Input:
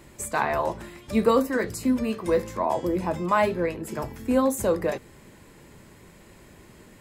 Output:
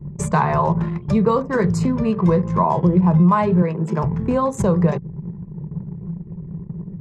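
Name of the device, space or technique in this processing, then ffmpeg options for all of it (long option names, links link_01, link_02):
jukebox: -filter_complex "[0:a]lowpass=6500,lowshelf=frequency=220:width_type=q:width=3:gain=7,acompressor=threshold=-28dB:ratio=4,asettb=1/sr,asplit=3[link_01][link_02][link_03];[link_01]atrim=end=3.624[link_04];[link_02]atrim=start=3.62:end=4.03,asetpts=PTS-STARTPTS,afade=type=in:duration=0.004:curve=qsin,afade=type=out:start_time=0.406:duration=0.004:curve=qsin,highpass=220[link_05];[link_03]atrim=start=4.026[link_06];[link_04][link_05]acrossfade=duration=0.004:curve1=hsin:curve2=qsin[link_07];[link_07][link_06]acrossfade=duration=0.004:curve1=qsin:curve2=hsin,anlmdn=0.158,equalizer=frequency=160:width_type=o:width=0.67:gain=12,equalizer=frequency=400:width_type=o:width=0.67:gain=11,equalizer=frequency=1000:width_type=o:width=0.67:gain=11,equalizer=frequency=6300:width_type=o:width=0.67:gain=5,volume=5dB"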